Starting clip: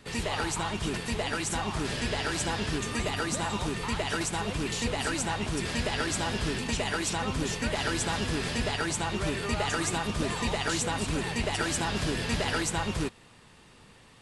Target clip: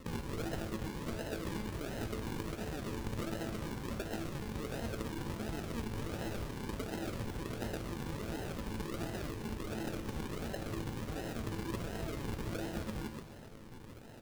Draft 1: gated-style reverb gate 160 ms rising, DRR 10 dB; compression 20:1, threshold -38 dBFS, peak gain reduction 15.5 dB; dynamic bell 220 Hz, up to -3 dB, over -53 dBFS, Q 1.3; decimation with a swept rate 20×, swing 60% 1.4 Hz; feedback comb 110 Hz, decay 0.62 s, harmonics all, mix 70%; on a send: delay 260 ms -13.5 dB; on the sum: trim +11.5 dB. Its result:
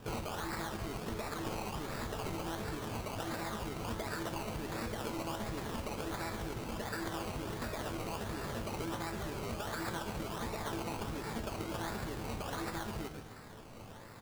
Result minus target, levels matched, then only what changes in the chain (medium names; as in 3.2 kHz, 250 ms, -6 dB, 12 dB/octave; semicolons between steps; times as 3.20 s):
decimation with a swept rate: distortion -6 dB
change: decimation with a swept rate 54×, swing 60% 1.4 Hz